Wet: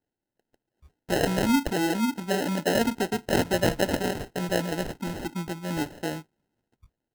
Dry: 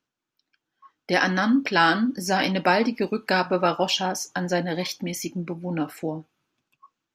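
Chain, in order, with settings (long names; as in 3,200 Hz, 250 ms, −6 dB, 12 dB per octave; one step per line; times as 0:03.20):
0:01.73–0:02.75: Butterworth low-pass 810 Hz 48 dB per octave
decimation without filtering 38×
level −2 dB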